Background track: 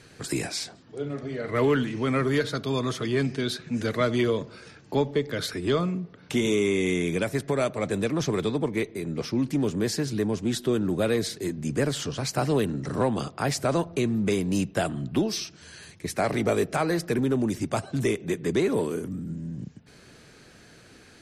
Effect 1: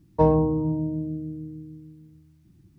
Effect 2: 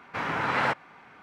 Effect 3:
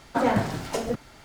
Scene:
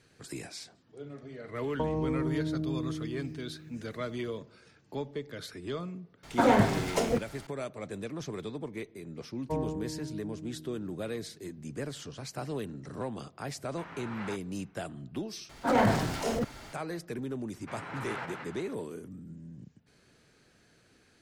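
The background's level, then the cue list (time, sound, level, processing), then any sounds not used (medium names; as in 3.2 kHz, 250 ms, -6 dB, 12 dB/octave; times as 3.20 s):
background track -12 dB
1.61 s: add 1 -1.5 dB + compression, threshold -26 dBFS
6.23 s: add 3
9.31 s: add 1 -14.5 dB
13.63 s: add 2 -17 dB
15.49 s: replace with 3 + transient shaper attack -9 dB, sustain +3 dB
17.53 s: add 2 -13.5 dB + backward echo that repeats 183 ms, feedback 43%, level -5 dB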